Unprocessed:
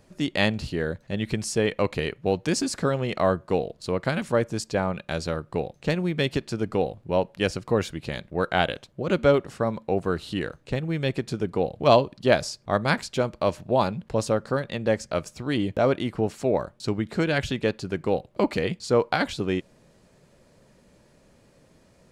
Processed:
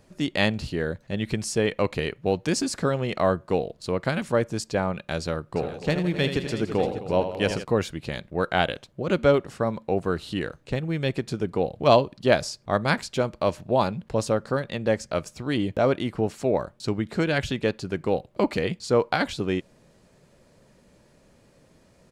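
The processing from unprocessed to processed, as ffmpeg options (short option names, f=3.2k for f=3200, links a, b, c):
-filter_complex "[0:a]asplit=3[a][b][c];[a]afade=t=out:st=5.55:d=0.02[d];[b]aecho=1:1:79|164|262|344|595:0.355|0.2|0.178|0.224|0.168,afade=t=in:st=5.55:d=0.02,afade=t=out:st=7.63:d=0.02[e];[c]afade=t=in:st=7.63:d=0.02[f];[d][e][f]amix=inputs=3:normalize=0"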